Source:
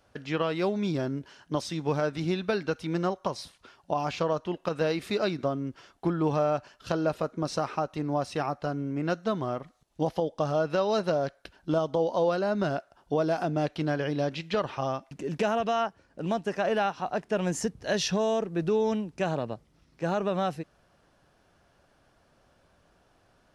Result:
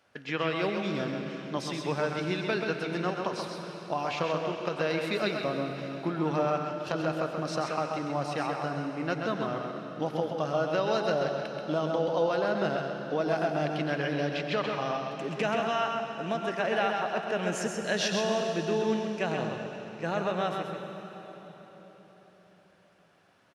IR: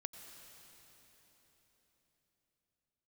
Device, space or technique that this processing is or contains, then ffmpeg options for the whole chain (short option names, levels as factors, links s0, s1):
PA in a hall: -filter_complex "[0:a]highpass=130,equalizer=f=2200:t=o:w=1.5:g=7,aecho=1:1:132:0.531[s0];[1:a]atrim=start_sample=2205[s1];[s0][s1]afir=irnorm=-1:irlink=0"